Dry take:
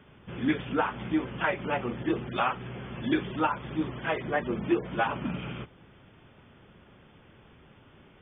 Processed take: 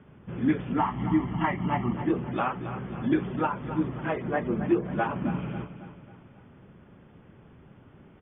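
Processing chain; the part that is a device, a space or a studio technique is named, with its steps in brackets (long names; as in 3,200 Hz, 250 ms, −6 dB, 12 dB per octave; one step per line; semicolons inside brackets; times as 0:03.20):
0:00.77–0:01.94: comb filter 1 ms, depth 88%
phone in a pocket (low-pass filter 3,000 Hz 12 dB per octave; parametric band 170 Hz +5 dB 1.8 octaves; high-shelf EQ 2,500 Hz −9 dB)
repeating echo 272 ms, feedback 47%, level −11.5 dB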